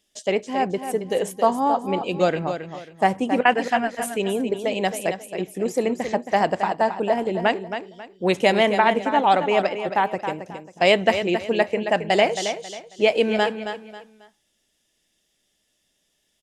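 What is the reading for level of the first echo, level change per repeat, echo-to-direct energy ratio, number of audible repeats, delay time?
−9.0 dB, −10.5 dB, −8.5 dB, 3, 271 ms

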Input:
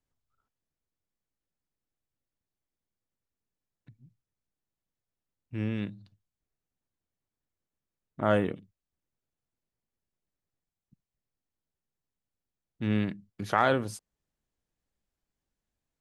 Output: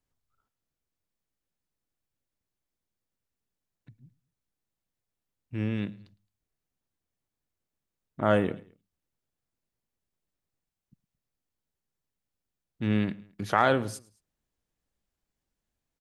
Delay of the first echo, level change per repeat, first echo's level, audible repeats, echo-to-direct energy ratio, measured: 109 ms, −6.0 dB, −22.5 dB, 2, −21.5 dB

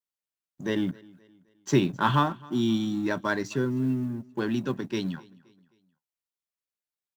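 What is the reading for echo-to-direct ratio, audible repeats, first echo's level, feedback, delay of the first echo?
−23.0 dB, 2, −24.0 dB, 43%, 262 ms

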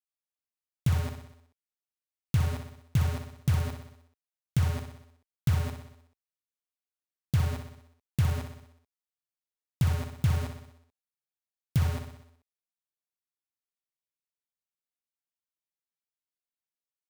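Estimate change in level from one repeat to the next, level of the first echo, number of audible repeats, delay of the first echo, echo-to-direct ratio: −4.5 dB, −7.5 dB, 6, 62 ms, −5.5 dB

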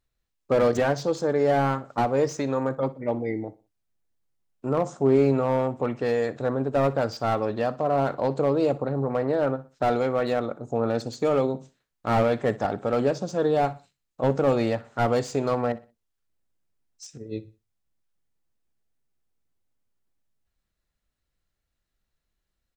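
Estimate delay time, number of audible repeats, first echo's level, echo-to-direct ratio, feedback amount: 61 ms, 2, −18.5 dB, −18.0 dB, 33%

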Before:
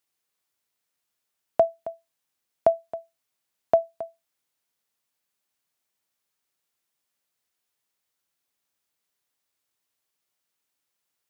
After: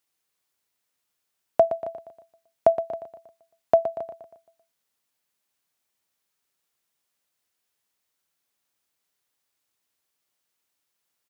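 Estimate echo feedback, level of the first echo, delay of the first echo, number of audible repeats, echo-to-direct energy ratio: 49%, −11.0 dB, 118 ms, 4, −10.0 dB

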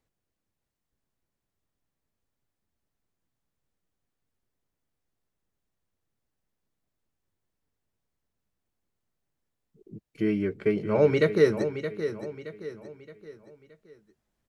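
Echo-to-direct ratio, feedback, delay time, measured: −9.0 dB, 41%, 621 ms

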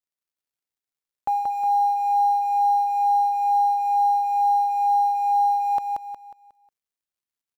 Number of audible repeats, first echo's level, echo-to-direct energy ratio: 4, −3.5 dB, −3.0 dB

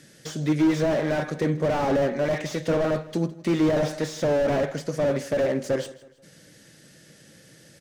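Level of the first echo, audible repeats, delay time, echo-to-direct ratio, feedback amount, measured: −19.0 dB, 3, 161 ms, −18.5 dB, 40%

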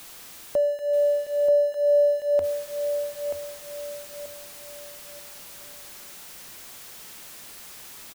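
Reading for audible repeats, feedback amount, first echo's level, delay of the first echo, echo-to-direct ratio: 3, 34%, −7.5 dB, 933 ms, −7.0 dB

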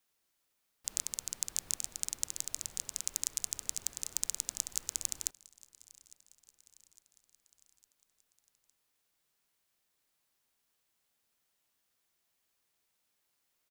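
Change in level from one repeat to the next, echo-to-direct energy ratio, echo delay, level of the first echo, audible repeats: −5.0 dB, −21.5 dB, 857 ms, −23.0 dB, 3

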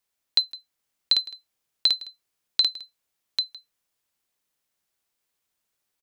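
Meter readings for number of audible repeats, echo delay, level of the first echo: 1, 793 ms, −4.5 dB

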